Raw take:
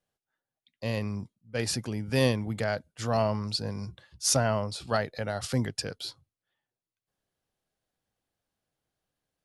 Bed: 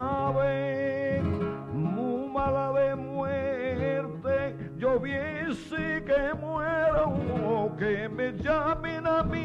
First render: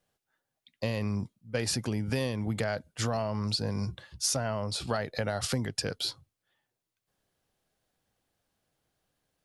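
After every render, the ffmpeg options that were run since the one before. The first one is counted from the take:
-filter_complex "[0:a]asplit=2[s0][s1];[s1]alimiter=limit=0.0841:level=0:latency=1,volume=1[s2];[s0][s2]amix=inputs=2:normalize=0,acompressor=threshold=0.0501:ratio=10"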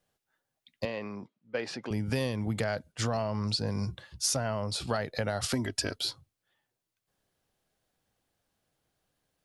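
-filter_complex "[0:a]asettb=1/sr,asplit=3[s0][s1][s2];[s0]atrim=end=0.854[s3];[s1]atrim=start=0.85:end=1.91,asetpts=PTS-STARTPTS,afade=t=in:d=0.004:c=qsin,afade=t=out:st=1.056:d=0.004:c=qsin,highpass=310,lowpass=3000[s4];[s2]atrim=start=1.906[s5];[s3][s4]acrossfade=d=0.004:c1=hsin:c2=qsin[s6];[s6][s5]acrossfade=d=0.004:c1=qsin:c2=hsin,asettb=1/sr,asplit=3[s7][s8][s9];[s7]atrim=end=2.924[s10];[s8]atrim=start=2.92:end=3.68,asetpts=PTS-STARTPTS,afade=t=in:d=0.004:c=qsin,afade=t=out:st=0.756:d=0.004:c=qsin,lowpass=9400[s11];[s9]atrim=start=3.676[s12];[s10][s11]acrossfade=d=0.004:c1=hsin:c2=qsin[s13];[s13][s12]acrossfade=d=0.004:c1=qsin:c2=hsin,asettb=1/sr,asplit=3[s14][s15][s16];[s14]atrim=end=5.534[s17];[s15]atrim=start=5.53:end=5.96,asetpts=PTS-STARTPTS,afade=t=in:d=0.004:c=qsin,afade=t=out:st=0.426:d=0.004:c=qsin,aecho=1:1:3.1:0.75,atrim=end_sample=18963[s18];[s16]atrim=start=5.956[s19];[s17][s18]acrossfade=d=0.004:c1=hsin:c2=qsin[s20];[s20][s19]acrossfade=d=0.004:c1=qsin:c2=hsin"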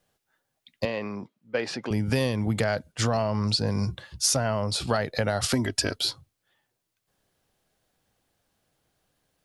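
-af "volume=1.88"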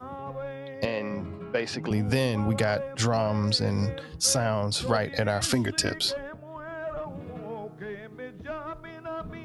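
-filter_complex "[1:a]volume=0.316[s0];[0:a][s0]amix=inputs=2:normalize=0"

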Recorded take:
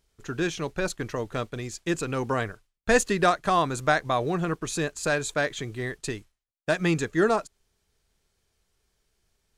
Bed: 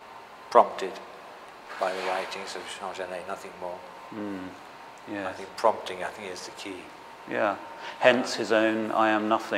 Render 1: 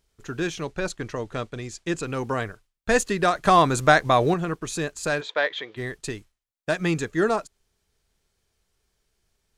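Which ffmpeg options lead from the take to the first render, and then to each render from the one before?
-filter_complex "[0:a]asettb=1/sr,asplit=3[s0][s1][s2];[s0]atrim=end=0.634[s3];[s1]atrim=start=0.63:end=2.04,asetpts=PTS-STARTPTS,afade=t=in:d=0.004:c=qsin,afade=t=out:st=1.406:d=0.004:c=qsin,lowpass=9400[s4];[s2]atrim=start=2.036[s5];[s3][s4]acrossfade=d=0.004:c1=hsin:c2=qsin[s6];[s6][s5]acrossfade=d=0.004:c1=qsin:c2=hsin,asettb=1/sr,asplit=3[s7][s8][s9];[s7]atrim=end=3.354[s10];[s8]atrim=start=3.35:end=4.34,asetpts=PTS-STARTPTS,afade=t=in:d=0.004:c=qsin,afade=t=out:st=0.986:d=0.004:c=qsin,acontrast=73[s11];[s9]atrim=start=4.336[s12];[s10][s11]acrossfade=d=0.004:c1=hsin:c2=qsin[s13];[s13][s12]acrossfade=d=0.004:c1=qsin:c2=hsin,asplit=3[s14][s15][s16];[s14]afade=t=out:st=5.2:d=0.02[s17];[s15]highpass=450,equalizer=f=510:t=q:w=4:g=7,equalizer=f=950:t=q:w=4:g=6,equalizer=f=1900:t=q:w=4:g=6,equalizer=f=3400:t=q:w=4:g=7,lowpass=f=4400:w=0.5412,lowpass=f=4400:w=1.3066,afade=t=in:st=5.2:d=0.02,afade=t=out:st=5.76:d=0.02[s18];[s16]afade=t=in:st=5.76:d=0.02[s19];[s17][s18][s19]amix=inputs=3:normalize=0"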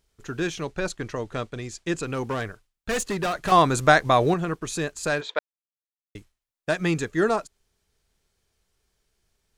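-filter_complex "[0:a]asettb=1/sr,asplit=3[s0][s1][s2];[s0]atrim=end=2.154[s3];[s1]atrim=start=2.15:end=3.52,asetpts=PTS-STARTPTS,afade=t=in:d=0.004:c=qsin,afade=t=out:st=1.366:d=0.004:c=qsin,asoftclip=type=hard:threshold=0.075[s4];[s2]atrim=start=3.516[s5];[s3][s4]acrossfade=d=0.004:c1=hsin:c2=qsin[s6];[s6][s5]acrossfade=d=0.004:c1=qsin:c2=hsin,asplit=3[s7][s8][s9];[s7]atrim=end=5.39,asetpts=PTS-STARTPTS,afade=t=out:st=5.386:d=0.004:c=hsin[s10];[s8]atrim=start=5.39:end=6.15,asetpts=PTS-STARTPTS,volume=0[s11];[s9]atrim=start=6.15,asetpts=PTS-STARTPTS,afade=t=in:d=0.004:c=hsin[s12];[s10][s11][s12]concat=n=3:v=0:a=1"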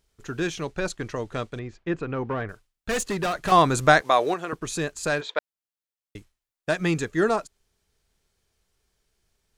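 -filter_complex "[0:a]asettb=1/sr,asplit=3[s0][s1][s2];[s0]atrim=end=1.594[s3];[s1]atrim=start=1.59:end=2.49,asetpts=PTS-STARTPTS,afade=t=in:d=0.004:c=qsin,afade=t=out:st=0.896:d=0.004:c=qsin,lowpass=2000[s4];[s2]atrim=start=2.486[s5];[s3][s4]acrossfade=d=0.004:c1=hsin:c2=qsin[s6];[s6][s5]acrossfade=d=0.004:c1=qsin:c2=hsin,asettb=1/sr,asplit=3[s7][s8][s9];[s7]atrim=end=4.014[s10];[s8]atrim=start=4.01:end=4.53,asetpts=PTS-STARTPTS,afade=t=in:d=0.004:c=qsin,afade=t=out:st=0.516:d=0.004:c=qsin,highpass=410[s11];[s9]atrim=start=4.526[s12];[s10][s11]acrossfade=d=0.004:c1=hsin:c2=qsin[s13];[s13][s12]acrossfade=d=0.004:c1=qsin:c2=hsin"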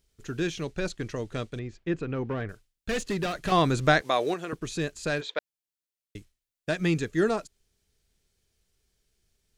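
-filter_complex "[0:a]acrossover=split=5200[s0][s1];[s1]acompressor=threshold=0.00562:ratio=4:attack=1:release=60[s2];[s0][s2]amix=inputs=2:normalize=0,equalizer=f=990:w=0.85:g=-8"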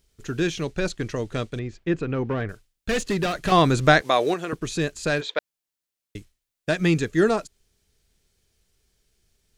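-af "volume=1.78"

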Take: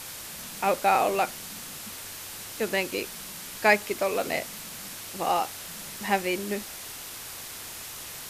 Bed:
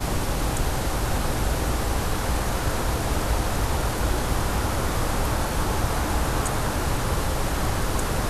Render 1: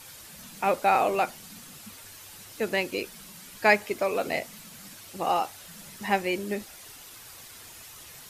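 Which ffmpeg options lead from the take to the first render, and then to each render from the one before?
-af "afftdn=nr=9:nf=-40"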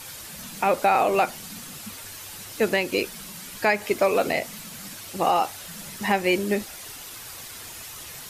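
-af "alimiter=limit=0.133:level=0:latency=1:release=133,acontrast=79"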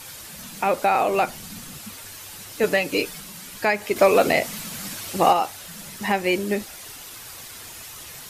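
-filter_complex "[0:a]asettb=1/sr,asplit=3[s0][s1][s2];[s0]atrim=end=1.204[s3];[s1]atrim=start=1.2:end=1.79,asetpts=PTS-STARTPTS,afade=t=in:d=0.004:c=qsin,afade=t=out:st=0.586:d=0.004:c=qsin,lowshelf=f=130:g=8.5[s4];[s2]atrim=start=1.786[s5];[s3][s4]acrossfade=d=0.004:c1=hsin:c2=qsin[s6];[s6][s5]acrossfade=d=0.004:c1=qsin:c2=hsin,asettb=1/sr,asplit=3[s7][s8][s9];[s7]atrim=end=2.634[s10];[s8]atrim=start=2.63:end=3.2,asetpts=PTS-STARTPTS,afade=t=in:d=0.004:c=qsin,afade=t=out:st=0.566:d=0.004:c=qsin,aecho=1:1:6.8:0.76,atrim=end_sample=25137[s11];[s9]atrim=start=3.196[s12];[s10][s11]acrossfade=d=0.004:c1=hsin:c2=qsin[s13];[s13][s12]acrossfade=d=0.004:c1=qsin:c2=hsin,asettb=1/sr,asplit=3[s14][s15][s16];[s14]atrim=end=3.964[s17];[s15]atrim=start=3.96:end=5.33,asetpts=PTS-STARTPTS,afade=t=in:d=0.004:c=qsin,afade=t=out:st=1.366:d=0.004:c=qsin,acontrast=37[s18];[s16]atrim=start=5.326[s19];[s17][s18]acrossfade=d=0.004:c1=hsin:c2=qsin[s20];[s20][s19]acrossfade=d=0.004:c1=qsin:c2=hsin"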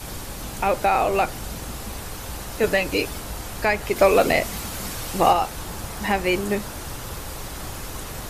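-filter_complex "[1:a]volume=0.316[s0];[0:a][s0]amix=inputs=2:normalize=0"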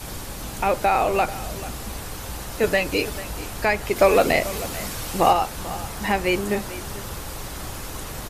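-af "aecho=1:1:440:0.158"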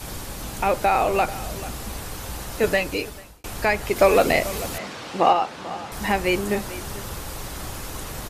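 -filter_complex "[0:a]asettb=1/sr,asplit=3[s0][s1][s2];[s0]atrim=end=4.784[s3];[s1]atrim=start=4.78:end=5.92,asetpts=PTS-STARTPTS,afade=t=in:d=0.004:c=qsin,afade=t=out:st=1.136:d=0.004:c=qsin,highpass=200,lowpass=4100[s4];[s2]atrim=start=5.916[s5];[s3][s4]acrossfade=d=0.004:c1=hsin:c2=qsin[s6];[s6][s5]acrossfade=d=0.004:c1=qsin:c2=hsin,asplit=2[s7][s8];[s7]atrim=end=3.44,asetpts=PTS-STARTPTS,afade=t=out:st=2.72:d=0.72[s9];[s8]atrim=start=3.44,asetpts=PTS-STARTPTS,afade=t=in:d=0.004:c=hsin[s10];[s9][s10]concat=n=2:v=0:a=1"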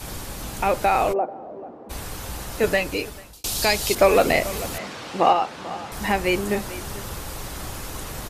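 -filter_complex "[0:a]asplit=3[s0][s1][s2];[s0]afade=t=out:st=1.12:d=0.02[s3];[s1]asuperpass=centerf=460:order=4:qfactor=0.91,afade=t=in:st=1.12:d=0.02,afade=t=out:st=1.89:d=0.02[s4];[s2]afade=t=in:st=1.89:d=0.02[s5];[s3][s4][s5]amix=inputs=3:normalize=0,asettb=1/sr,asplit=3[s6][s7][s8];[s6]atrim=end=3.334[s9];[s7]atrim=start=3.33:end=3.95,asetpts=PTS-STARTPTS,afade=t=in:d=0.004:c=qsin,afade=t=out:st=0.616:d=0.004:c=qsin,highshelf=f=2800:t=q:w=1.5:g=11.5[s10];[s8]atrim=start=3.946[s11];[s9][s10]acrossfade=d=0.004:c1=hsin:c2=qsin[s12];[s12][s11]acrossfade=d=0.004:c1=qsin:c2=hsin"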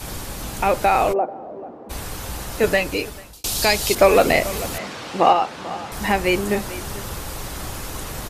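-af "volume=1.33"

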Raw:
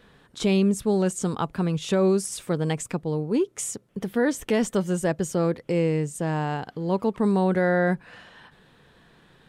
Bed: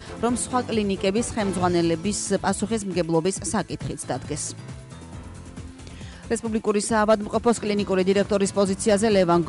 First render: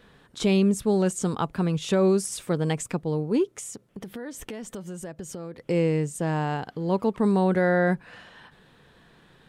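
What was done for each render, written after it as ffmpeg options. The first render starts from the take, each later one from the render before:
-filter_complex "[0:a]asettb=1/sr,asplit=3[s0][s1][s2];[s0]atrim=end=3.524[s3];[s1]atrim=start=3.52:end=5.68,asetpts=PTS-STARTPTS,afade=t=in:d=0.004:c=qsin,afade=t=out:st=2.156:d=0.004:c=qsin,acompressor=threshold=0.02:ratio=5:attack=3.2:release=140:knee=1:detection=peak[s4];[s2]atrim=start=5.676[s5];[s3][s4]acrossfade=d=0.004:c1=hsin:c2=qsin[s6];[s6][s5]acrossfade=d=0.004:c1=qsin:c2=hsin"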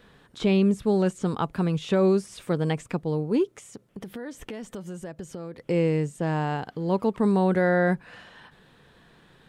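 -filter_complex "[0:a]acrossover=split=4000[s0][s1];[s1]acompressor=threshold=0.00398:ratio=4:attack=1:release=60[s2];[s0][s2]amix=inputs=2:normalize=0"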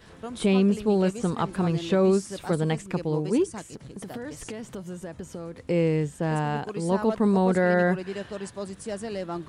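-filter_complex "[1:a]volume=0.2[s0];[0:a][s0]amix=inputs=2:normalize=0"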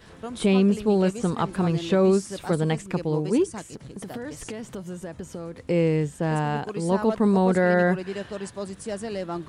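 -af "volume=1.19"

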